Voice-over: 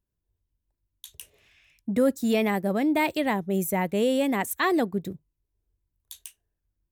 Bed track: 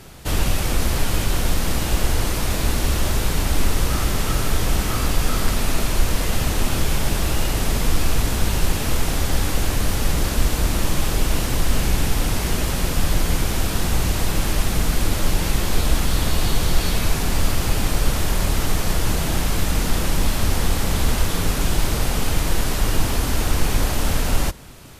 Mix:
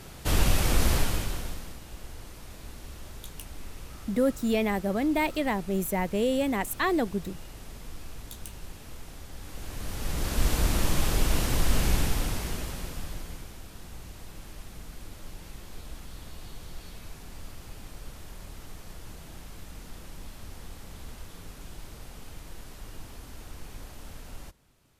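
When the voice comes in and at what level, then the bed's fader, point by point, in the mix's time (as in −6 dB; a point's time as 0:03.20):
2.20 s, −2.5 dB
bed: 0:00.94 −3 dB
0:01.80 −23 dB
0:09.35 −23 dB
0:10.50 −5 dB
0:11.94 −5 dB
0:13.60 −23.5 dB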